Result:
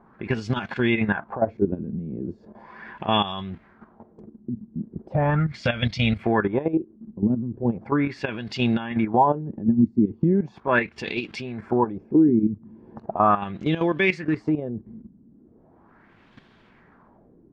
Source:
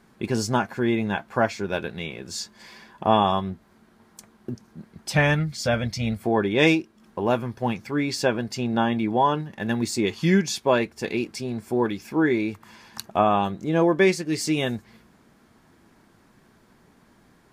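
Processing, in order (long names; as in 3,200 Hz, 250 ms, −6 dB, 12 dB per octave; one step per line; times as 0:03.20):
dynamic equaliser 580 Hz, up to −5 dB, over −30 dBFS, Q 0.74
in parallel at +2 dB: downward compressor 8 to 1, threshold −32 dBFS, peak gain reduction 16 dB
on the sum: brickwall limiter −15 dBFS, peak gain reduction 10.5 dB
output level in coarse steps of 12 dB
auto-filter low-pass sine 0.38 Hz 230–3,400 Hz
level +3.5 dB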